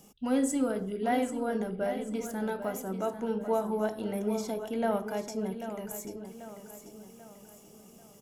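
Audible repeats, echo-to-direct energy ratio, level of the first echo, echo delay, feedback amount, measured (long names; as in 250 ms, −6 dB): 4, −9.5 dB, −10.5 dB, 789 ms, 45%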